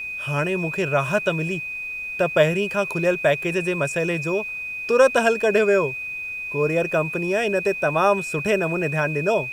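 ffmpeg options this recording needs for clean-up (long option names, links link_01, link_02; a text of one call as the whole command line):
ffmpeg -i in.wav -af "bandreject=frequency=2500:width=30,agate=range=-21dB:threshold=-23dB" out.wav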